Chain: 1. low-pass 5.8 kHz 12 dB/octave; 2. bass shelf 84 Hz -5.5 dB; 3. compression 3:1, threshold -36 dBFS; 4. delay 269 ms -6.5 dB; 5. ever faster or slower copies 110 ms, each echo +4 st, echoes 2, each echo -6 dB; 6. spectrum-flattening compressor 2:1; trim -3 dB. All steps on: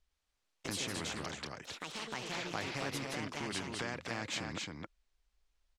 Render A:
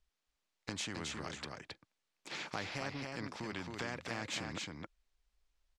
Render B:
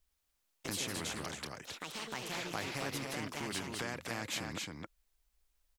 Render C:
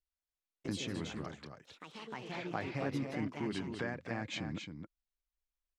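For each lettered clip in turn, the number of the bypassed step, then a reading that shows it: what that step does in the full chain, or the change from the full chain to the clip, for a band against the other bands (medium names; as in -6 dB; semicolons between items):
5, momentary loudness spread change +5 LU; 1, 8 kHz band +2.5 dB; 6, 8 kHz band -9.5 dB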